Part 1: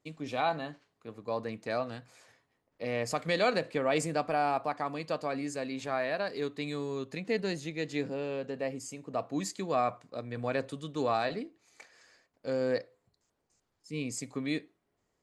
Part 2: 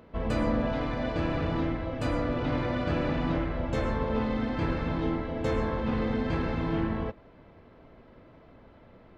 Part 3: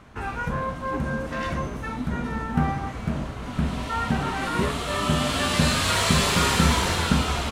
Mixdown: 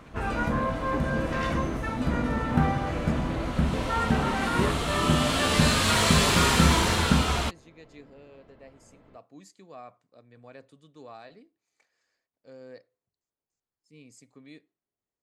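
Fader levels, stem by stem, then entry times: -16.0, -4.0, -0.5 dB; 0.00, 0.00, 0.00 s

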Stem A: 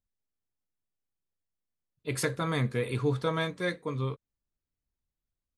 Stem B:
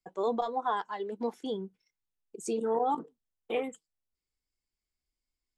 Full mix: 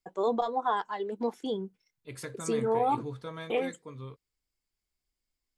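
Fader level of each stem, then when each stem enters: -11.0, +2.0 dB; 0.00, 0.00 s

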